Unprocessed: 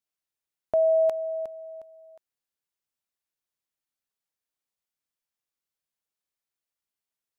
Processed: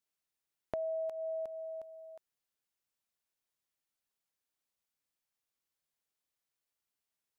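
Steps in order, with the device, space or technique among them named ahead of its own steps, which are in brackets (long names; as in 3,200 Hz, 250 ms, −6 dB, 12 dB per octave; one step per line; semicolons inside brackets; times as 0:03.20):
serial compression, peaks first (downward compressor 5 to 1, threshold −31 dBFS, peak gain reduction 10.5 dB; downward compressor 1.5 to 1, threshold −43 dBFS, peak gain reduction 5.5 dB)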